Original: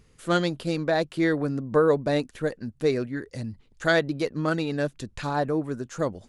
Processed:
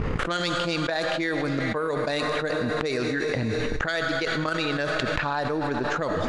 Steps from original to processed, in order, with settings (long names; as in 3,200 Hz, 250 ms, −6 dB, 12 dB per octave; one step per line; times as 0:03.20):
low-pass that shuts in the quiet parts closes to 960 Hz, open at −18 dBFS
tilt shelving filter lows −6.5 dB, about 870 Hz
transient designer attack +12 dB, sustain −4 dB
gate with flip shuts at −38 dBFS, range −25 dB
comb and all-pass reverb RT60 3.6 s, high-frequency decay 1×, pre-delay 10 ms, DRR 16 dB
envelope flattener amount 100%
level +6 dB